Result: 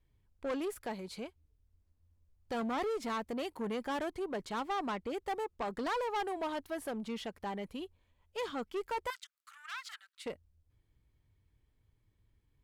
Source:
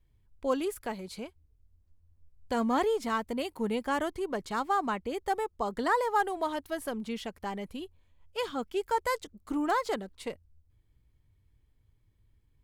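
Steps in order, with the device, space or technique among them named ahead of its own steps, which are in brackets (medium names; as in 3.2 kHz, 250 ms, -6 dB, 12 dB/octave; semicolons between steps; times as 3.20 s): tube preamp driven hard (valve stage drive 31 dB, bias 0.25; bass shelf 150 Hz -5 dB; treble shelf 6.8 kHz -6 dB); 9.10–10.26 s: elliptic high-pass 1.3 kHz, stop band 80 dB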